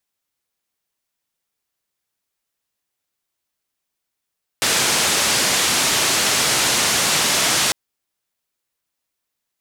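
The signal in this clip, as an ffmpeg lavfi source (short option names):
-f lavfi -i "anoisesrc=c=white:d=3.1:r=44100:seed=1,highpass=f=100,lowpass=f=8000,volume=-8.9dB"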